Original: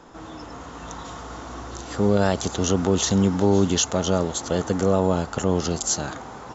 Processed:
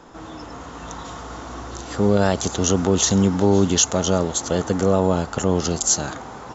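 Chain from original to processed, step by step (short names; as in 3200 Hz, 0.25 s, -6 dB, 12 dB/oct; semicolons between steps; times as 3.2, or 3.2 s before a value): dynamic EQ 6600 Hz, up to +4 dB, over -36 dBFS, Q 1.9; gain +2 dB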